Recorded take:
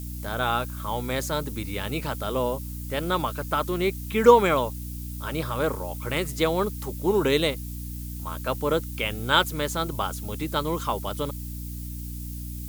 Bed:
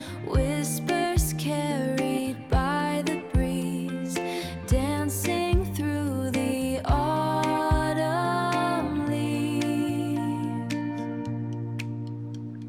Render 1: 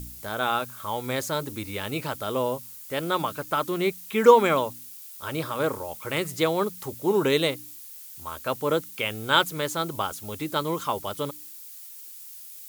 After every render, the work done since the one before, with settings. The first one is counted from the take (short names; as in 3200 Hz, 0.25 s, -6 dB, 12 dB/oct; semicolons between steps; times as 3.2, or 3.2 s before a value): de-hum 60 Hz, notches 5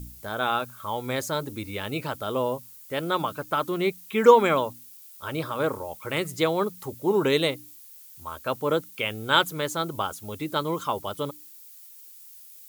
denoiser 6 dB, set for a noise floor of -43 dBFS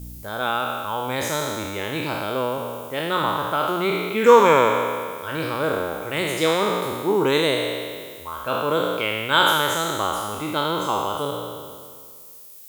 spectral trails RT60 1.91 s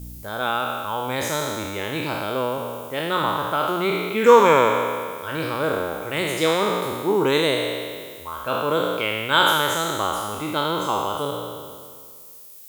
nothing audible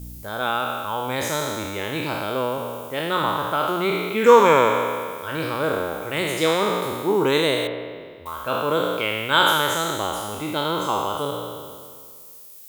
7.67–8.26 air absorption 410 m; 9.95–10.66 bell 1200 Hz -6.5 dB 0.42 oct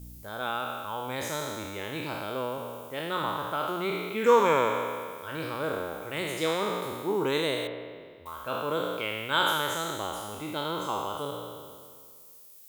gain -8 dB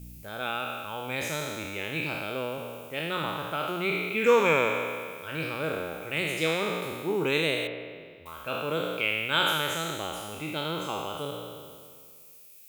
thirty-one-band EQ 160 Hz +5 dB, 1000 Hz -7 dB, 2500 Hz +12 dB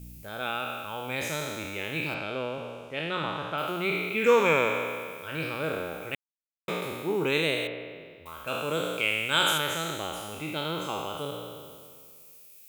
2.14–3.58 LPF 5700 Hz; 6.15–6.68 mute; 8.47–9.58 bell 7800 Hz +11 dB 0.9 oct